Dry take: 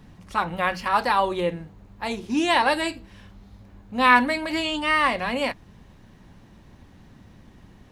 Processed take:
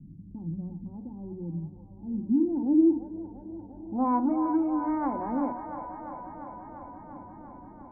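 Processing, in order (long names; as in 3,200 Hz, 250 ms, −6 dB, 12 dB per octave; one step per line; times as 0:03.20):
formant resonators in series u
in parallel at −2 dB: downward compressor, threshold −43 dBFS, peak gain reduction 21 dB
on the sum: soft clipping −25 dBFS, distortion −13 dB
low-pass filter sweep 160 Hz → 1,500 Hz, 0:01.97–0:04.61
mains-hum notches 60/120/180/240/300 Hz
delay with a band-pass on its return 345 ms, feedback 78%, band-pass 1,100 Hz, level −6 dB
level +5.5 dB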